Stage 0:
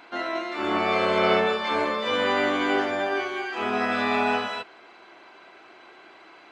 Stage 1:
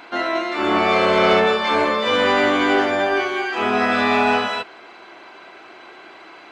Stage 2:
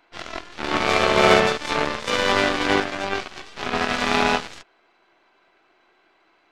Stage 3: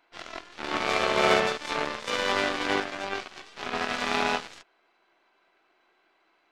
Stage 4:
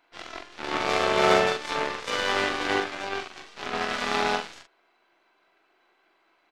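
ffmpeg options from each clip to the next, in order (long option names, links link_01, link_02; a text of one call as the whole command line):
ffmpeg -i in.wav -af "asoftclip=type=tanh:threshold=-15dB,volume=7.5dB" out.wav
ffmpeg -i in.wav -af "aeval=exprs='0.422*(cos(1*acos(clip(val(0)/0.422,-1,1)))-cos(1*PI/2))+0.15*(cos(3*acos(clip(val(0)/0.422,-1,1)))-cos(3*PI/2))+0.00596*(cos(8*acos(clip(val(0)/0.422,-1,1)))-cos(8*PI/2))':channel_layout=same,volume=4.5dB" out.wav
ffmpeg -i in.wav -af "lowshelf=frequency=180:gain=-7.5,volume=-6dB" out.wav
ffmpeg -i in.wav -filter_complex "[0:a]asplit=2[link_01][link_02];[link_02]adelay=43,volume=-6dB[link_03];[link_01][link_03]amix=inputs=2:normalize=0" out.wav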